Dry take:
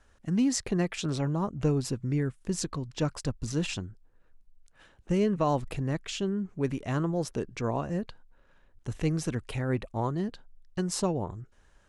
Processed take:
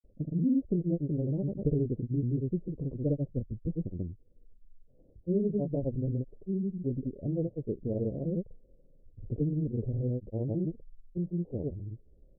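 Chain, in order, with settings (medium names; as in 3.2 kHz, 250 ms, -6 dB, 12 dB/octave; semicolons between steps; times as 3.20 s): steep low-pass 590 Hz 48 dB/octave; in parallel at -1 dB: compression, threshold -41 dBFS, peak gain reduction 18 dB; on the sum: granulator, spray 100 ms, pitch spread up and down by 0 st; speed mistake 25 fps video run at 24 fps; trim -1.5 dB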